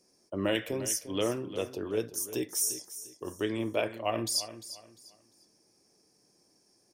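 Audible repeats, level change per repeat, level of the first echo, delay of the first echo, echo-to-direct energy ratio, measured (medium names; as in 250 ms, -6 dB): 2, -11.0 dB, -13.5 dB, 349 ms, -13.0 dB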